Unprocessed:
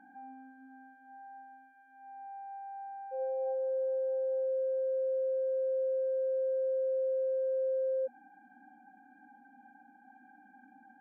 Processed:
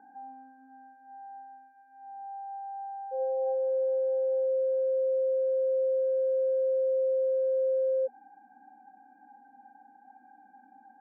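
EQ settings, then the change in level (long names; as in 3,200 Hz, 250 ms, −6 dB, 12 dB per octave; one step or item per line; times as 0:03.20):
Bessel low-pass filter 1,300 Hz, order 2
parametric band 440 Hz +14 dB 0.42 octaves
parametric band 950 Hz +12.5 dB 1.3 octaves
−5.5 dB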